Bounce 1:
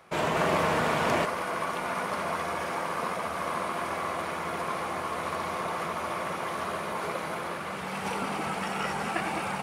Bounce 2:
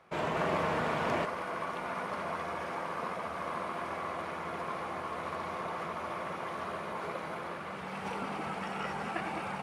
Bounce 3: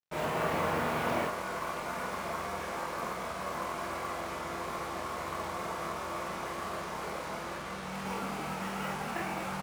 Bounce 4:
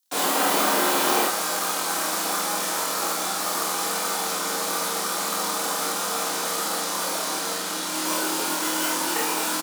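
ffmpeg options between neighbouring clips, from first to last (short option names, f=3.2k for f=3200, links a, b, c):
-af "lowpass=f=3.3k:p=1,volume=-5dB"
-filter_complex "[0:a]aeval=exprs='val(0)+0.00178*(sin(2*PI*60*n/s)+sin(2*PI*2*60*n/s)/2+sin(2*PI*3*60*n/s)/3+sin(2*PI*4*60*n/s)/4+sin(2*PI*5*60*n/s)/5)':c=same,acrusher=bits=6:mix=0:aa=0.5,asplit=2[a][b];[b]aecho=0:1:26|47:0.631|0.708[c];[a][c]amix=inputs=2:normalize=0,volume=-2.5dB"
-filter_complex "[0:a]afreqshift=120,acrossover=split=120[a][b];[b]aexciter=amount=3.9:drive=6.6:freq=3.4k[c];[a][c]amix=inputs=2:normalize=0,asplit=2[d][e];[e]adelay=28,volume=-5.5dB[f];[d][f]amix=inputs=2:normalize=0,volume=7dB"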